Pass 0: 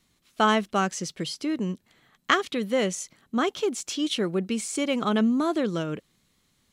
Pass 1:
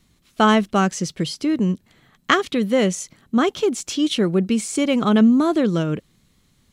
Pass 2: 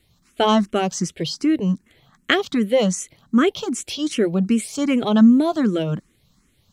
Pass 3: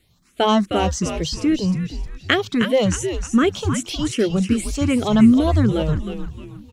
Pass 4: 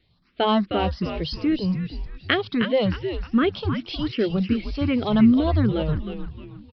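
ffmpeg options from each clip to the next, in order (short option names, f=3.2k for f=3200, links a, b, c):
-af "lowshelf=f=240:g=9,volume=4dB"
-filter_complex "[0:a]asplit=2[a][b];[b]afreqshift=2.6[c];[a][c]amix=inputs=2:normalize=1,volume=2.5dB"
-filter_complex "[0:a]asplit=6[a][b][c][d][e][f];[b]adelay=310,afreqshift=-140,volume=-7dB[g];[c]adelay=620,afreqshift=-280,volume=-15.2dB[h];[d]adelay=930,afreqshift=-420,volume=-23.4dB[i];[e]adelay=1240,afreqshift=-560,volume=-31.5dB[j];[f]adelay=1550,afreqshift=-700,volume=-39.7dB[k];[a][g][h][i][j][k]amix=inputs=6:normalize=0"
-af "aresample=11025,aresample=44100,volume=-3.5dB"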